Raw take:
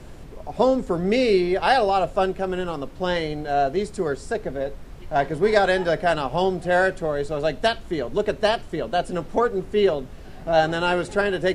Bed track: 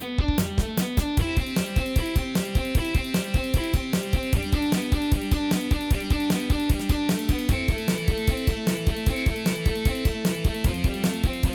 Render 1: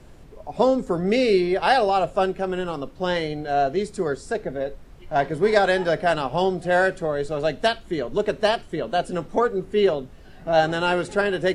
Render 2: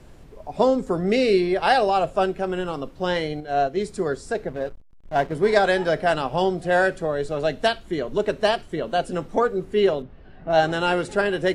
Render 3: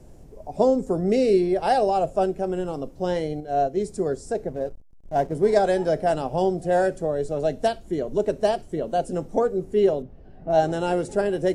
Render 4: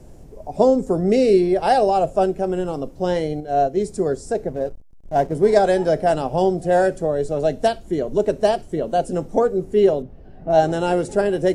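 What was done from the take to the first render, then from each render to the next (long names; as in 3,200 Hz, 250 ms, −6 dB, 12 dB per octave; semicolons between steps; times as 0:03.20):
noise reduction from a noise print 6 dB
0:03.40–0:03.80: expander for the loud parts, over −30 dBFS; 0:04.48–0:05.35: slack as between gear wheels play −30.5 dBFS; 0:10.02–0:10.50: high-frequency loss of the air 310 metres
flat-topped bell 2,100 Hz −10.5 dB 2.4 octaves
level +4 dB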